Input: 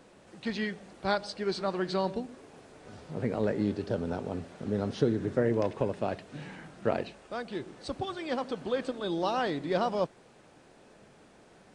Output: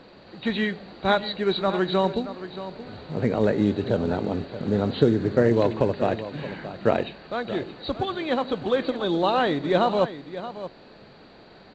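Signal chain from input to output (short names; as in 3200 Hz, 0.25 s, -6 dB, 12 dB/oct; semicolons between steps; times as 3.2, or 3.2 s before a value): nonlinear frequency compression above 3700 Hz 4:1; echo 0.625 s -13 dB; gain +7.5 dB; µ-law 128 kbps 16000 Hz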